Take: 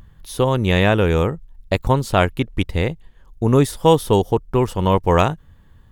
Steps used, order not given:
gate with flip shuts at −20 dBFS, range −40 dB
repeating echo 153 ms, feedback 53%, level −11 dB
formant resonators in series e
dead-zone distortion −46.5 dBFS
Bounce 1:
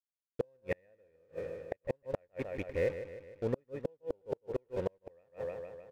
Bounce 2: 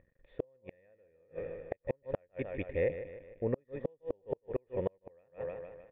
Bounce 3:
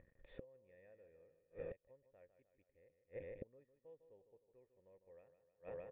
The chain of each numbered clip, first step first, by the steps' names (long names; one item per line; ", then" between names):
formant resonators in series, then dead-zone distortion, then repeating echo, then gate with flip
repeating echo, then dead-zone distortion, then formant resonators in series, then gate with flip
dead-zone distortion, then repeating echo, then gate with flip, then formant resonators in series